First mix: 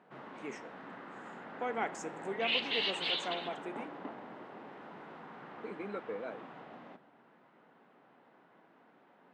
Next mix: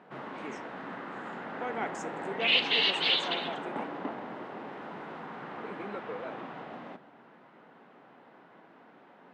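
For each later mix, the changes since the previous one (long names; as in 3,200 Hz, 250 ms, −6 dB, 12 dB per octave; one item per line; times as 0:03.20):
background +7.5 dB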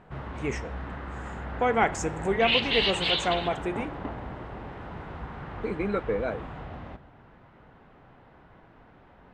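speech +12.0 dB
master: remove high-pass filter 200 Hz 24 dB per octave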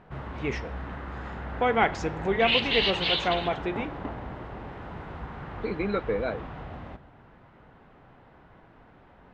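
speech: add high shelf with overshoot 6,100 Hz −13 dB, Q 3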